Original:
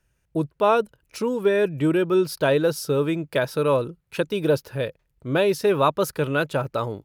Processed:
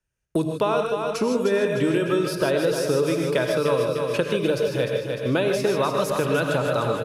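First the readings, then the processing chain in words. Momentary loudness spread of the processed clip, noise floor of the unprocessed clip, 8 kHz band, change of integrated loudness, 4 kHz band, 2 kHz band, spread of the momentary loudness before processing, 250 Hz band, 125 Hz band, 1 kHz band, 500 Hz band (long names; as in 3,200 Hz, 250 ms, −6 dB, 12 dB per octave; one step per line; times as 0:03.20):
3 LU, −71 dBFS, +2.5 dB, 0.0 dB, +2.5 dB, +0.5 dB, 9 LU, +0.5 dB, 0.0 dB, −1.5 dB, +0.5 dB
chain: low-pass filter 9,600 Hz 12 dB per octave
mains-hum notches 50/100/150 Hz
downward expander −41 dBFS
high-shelf EQ 5,600 Hz +5 dB
downward compressor, threshold −19 dBFS, peak gain reduction 6 dB
repeating echo 301 ms, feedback 41%, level −8 dB
reverb whose tail is shaped and stops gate 170 ms rising, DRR 3.5 dB
multiband upward and downward compressor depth 70%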